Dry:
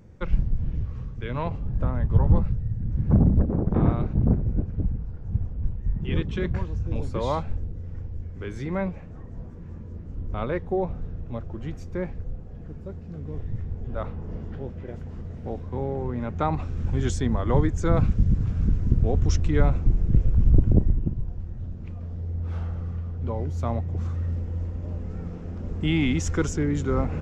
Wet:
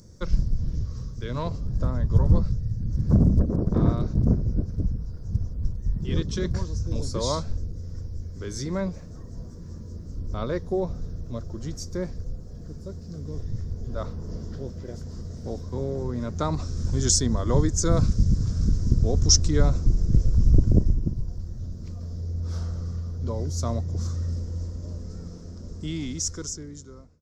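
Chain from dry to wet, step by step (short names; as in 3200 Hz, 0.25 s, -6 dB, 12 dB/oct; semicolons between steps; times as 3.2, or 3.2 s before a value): ending faded out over 3.20 s; resonant high shelf 3700 Hz +12.5 dB, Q 3; notch 810 Hz, Q 5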